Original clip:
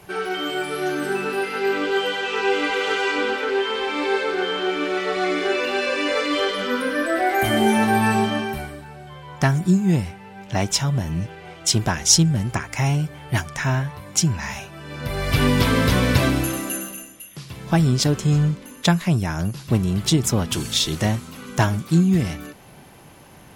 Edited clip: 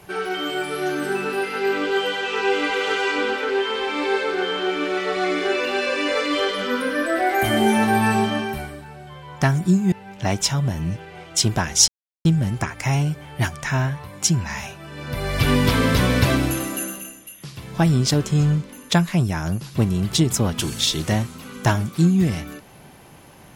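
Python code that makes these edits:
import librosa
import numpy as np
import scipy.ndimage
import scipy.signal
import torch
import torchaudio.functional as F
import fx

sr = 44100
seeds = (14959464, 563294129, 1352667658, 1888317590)

y = fx.edit(x, sr, fx.cut(start_s=9.92, length_s=0.3),
    fx.insert_silence(at_s=12.18, length_s=0.37), tone=tone)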